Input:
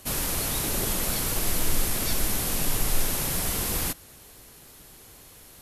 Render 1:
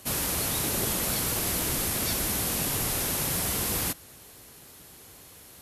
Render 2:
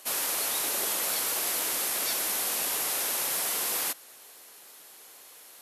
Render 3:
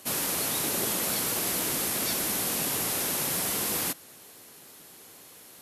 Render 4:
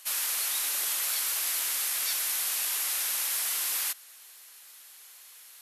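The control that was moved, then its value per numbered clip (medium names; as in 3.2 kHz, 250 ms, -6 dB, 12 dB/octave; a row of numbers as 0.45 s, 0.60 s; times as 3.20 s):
high-pass, cutoff frequency: 61 Hz, 530 Hz, 190 Hz, 1.4 kHz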